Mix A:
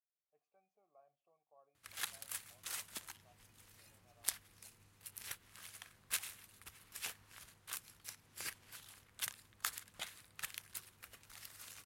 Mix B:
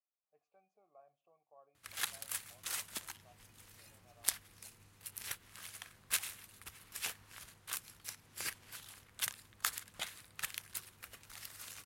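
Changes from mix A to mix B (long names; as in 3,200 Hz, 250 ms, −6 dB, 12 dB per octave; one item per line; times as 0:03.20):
speech +5.0 dB
background +4.0 dB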